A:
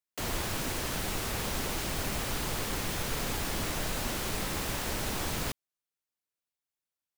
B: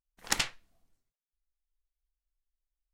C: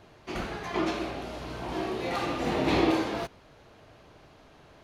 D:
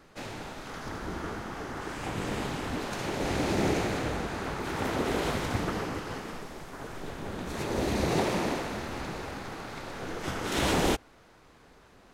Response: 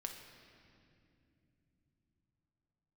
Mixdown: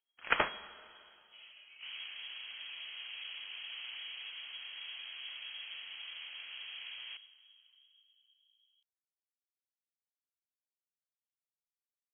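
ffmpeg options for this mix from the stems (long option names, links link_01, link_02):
-filter_complex "[0:a]lowpass=1000,adelay=1650,volume=-10dB,asplit=2[link_01][link_02];[link_02]volume=-4.5dB[link_03];[1:a]volume=1.5dB,asplit=2[link_04][link_05];[link_05]volume=-4dB[link_06];[2:a]lowpass=frequency=1100:width=0.5412,lowpass=frequency=1100:width=1.3066,acrusher=bits=3:mode=log:mix=0:aa=0.000001,asoftclip=type=tanh:threshold=-27.5dB,adelay=1050,volume=-20dB,asplit=2[link_07][link_08];[link_08]volume=-6dB[link_09];[4:a]atrim=start_sample=2205[link_10];[link_03][link_06][link_09]amix=inputs=3:normalize=0[link_11];[link_11][link_10]afir=irnorm=-1:irlink=0[link_12];[link_01][link_04][link_07][link_12]amix=inputs=4:normalize=0,lowshelf=frequency=240:gain=-8,lowpass=frequency=2800:width_type=q:width=0.5098,lowpass=frequency=2800:width_type=q:width=0.6013,lowpass=frequency=2800:width_type=q:width=0.9,lowpass=frequency=2800:width_type=q:width=2.563,afreqshift=-3300"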